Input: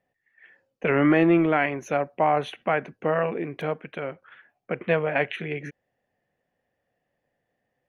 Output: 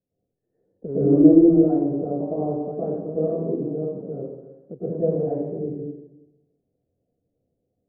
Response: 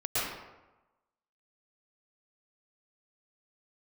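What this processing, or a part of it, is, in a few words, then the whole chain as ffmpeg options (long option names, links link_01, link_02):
next room: -filter_complex "[0:a]lowpass=frequency=440:width=0.5412,lowpass=frequency=440:width=1.3066[link_01];[1:a]atrim=start_sample=2205[link_02];[link_01][link_02]afir=irnorm=-1:irlink=0,volume=-2dB"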